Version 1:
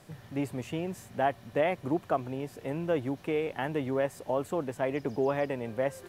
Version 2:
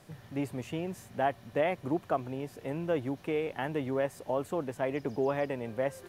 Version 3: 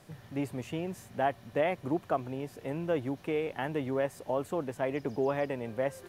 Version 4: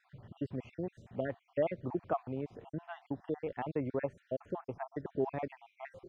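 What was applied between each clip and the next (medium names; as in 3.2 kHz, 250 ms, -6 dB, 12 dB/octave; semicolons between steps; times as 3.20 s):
band-stop 7.7 kHz, Q 24; trim -1.5 dB
no audible change
random holes in the spectrogram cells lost 53%; tape spacing loss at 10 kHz 32 dB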